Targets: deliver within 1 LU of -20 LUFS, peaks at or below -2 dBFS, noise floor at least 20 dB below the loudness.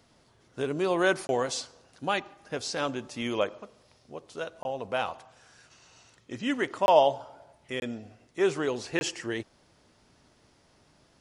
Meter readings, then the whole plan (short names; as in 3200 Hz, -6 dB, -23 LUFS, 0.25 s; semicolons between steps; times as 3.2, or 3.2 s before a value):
dropouts 5; longest dropout 21 ms; loudness -29.5 LUFS; peak -7.5 dBFS; loudness target -20.0 LUFS
-> interpolate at 1.27/4.63/6.86/7.8/8.99, 21 ms; gain +9.5 dB; limiter -2 dBFS